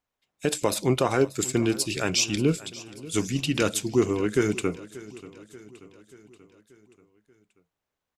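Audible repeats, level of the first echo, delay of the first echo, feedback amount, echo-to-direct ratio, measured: 4, -18.5 dB, 584 ms, 56%, -17.0 dB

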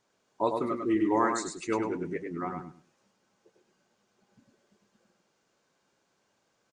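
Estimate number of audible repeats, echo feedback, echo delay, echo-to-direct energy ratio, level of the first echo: 3, 22%, 101 ms, -5.0 dB, -5.0 dB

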